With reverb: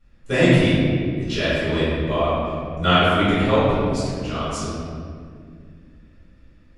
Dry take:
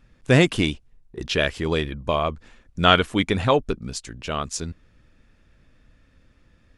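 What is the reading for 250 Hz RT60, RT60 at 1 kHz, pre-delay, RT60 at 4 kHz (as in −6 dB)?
3.4 s, 1.8 s, 3 ms, 1.2 s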